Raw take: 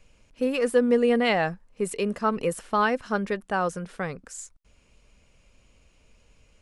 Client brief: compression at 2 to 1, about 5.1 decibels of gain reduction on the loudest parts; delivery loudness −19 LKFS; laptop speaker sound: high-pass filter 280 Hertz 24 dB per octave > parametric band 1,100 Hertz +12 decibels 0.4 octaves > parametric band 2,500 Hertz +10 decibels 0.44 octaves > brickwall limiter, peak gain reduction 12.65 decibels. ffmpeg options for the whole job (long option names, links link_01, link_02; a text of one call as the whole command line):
ffmpeg -i in.wav -af "acompressor=threshold=-25dB:ratio=2,highpass=frequency=280:width=0.5412,highpass=frequency=280:width=1.3066,equalizer=frequency=1100:width_type=o:width=0.4:gain=12,equalizer=frequency=2500:width_type=o:width=0.44:gain=10,volume=14dB,alimiter=limit=-7.5dB:level=0:latency=1" out.wav